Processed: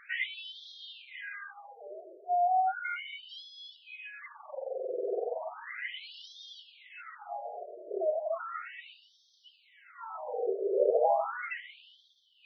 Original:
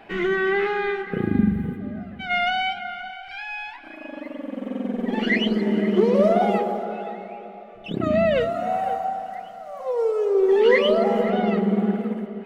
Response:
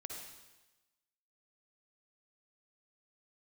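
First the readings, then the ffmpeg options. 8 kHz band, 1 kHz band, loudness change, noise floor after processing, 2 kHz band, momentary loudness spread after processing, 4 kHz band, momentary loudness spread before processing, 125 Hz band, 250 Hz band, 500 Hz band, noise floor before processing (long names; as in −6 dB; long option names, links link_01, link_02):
can't be measured, −7.0 dB, −11.5 dB, −66 dBFS, −12.0 dB, 20 LU, −12.0 dB, 17 LU, below −40 dB, −27.5 dB, −12.0 dB, −40 dBFS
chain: -af "afftfilt=real='re*lt(hypot(re,im),0.891)':imag='im*lt(hypot(re,im),0.891)':win_size=1024:overlap=0.75,afftfilt=real='re*between(b*sr/1024,480*pow(4500/480,0.5+0.5*sin(2*PI*0.35*pts/sr))/1.41,480*pow(4500/480,0.5+0.5*sin(2*PI*0.35*pts/sr))*1.41)':imag='im*between(b*sr/1024,480*pow(4500/480,0.5+0.5*sin(2*PI*0.35*pts/sr))/1.41,480*pow(4500/480,0.5+0.5*sin(2*PI*0.35*pts/sr))*1.41)':win_size=1024:overlap=0.75"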